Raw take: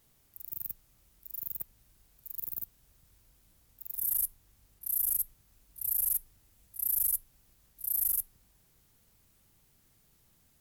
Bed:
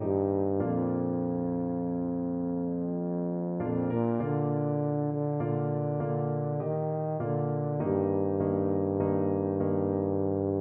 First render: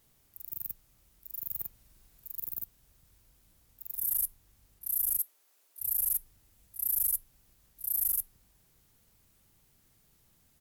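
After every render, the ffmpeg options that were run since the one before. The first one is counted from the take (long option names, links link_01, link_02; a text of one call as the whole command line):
ffmpeg -i in.wav -filter_complex "[0:a]asplit=3[link_01][link_02][link_03];[link_01]afade=type=out:start_time=1.5:duration=0.02[link_04];[link_02]asplit=2[link_05][link_06];[link_06]adelay=45,volume=-2dB[link_07];[link_05][link_07]amix=inputs=2:normalize=0,afade=type=in:start_time=1.5:duration=0.02,afade=type=out:start_time=2.27:duration=0.02[link_08];[link_03]afade=type=in:start_time=2.27:duration=0.02[link_09];[link_04][link_08][link_09]amix=inputs=3:normalize=0,asplit=3[link_10][link_11][link_12];[link_10]afade=type=out:start_time=5.18:duration=0.02[link_13];[link_11]highpass=frequency=400:width=0.5412,highpass=frequency=400:width=1.3066,afade=type=in:start_time=5.18:duration=0.02,afade=type=out:start_time=5.8:duration=0.02[link_14];[link_12]afade=type=in:start_time=5.8:duration=0.02[link_15];[link_13][link_14][link_15]amix=inputs=3:normalize=0" out.wav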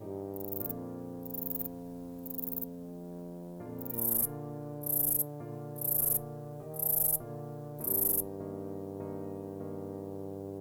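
ffmpeg -i in.wav -i bed.wav -filter_complex "[1:a]volume=-12.5dB[link_01];[0:a][link_01]amix=inputs=2:normalize=0" out.wav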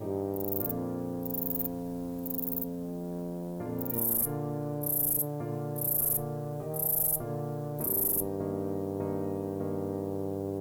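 ffmpeg -i in.wav -af "acontrast=84,alimiter=limit=-20dB:level=0:latency=1:release=15" out.wav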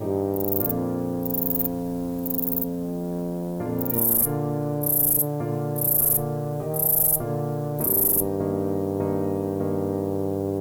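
ffmpeg -i in.wav -af "volume=8dB" out.wav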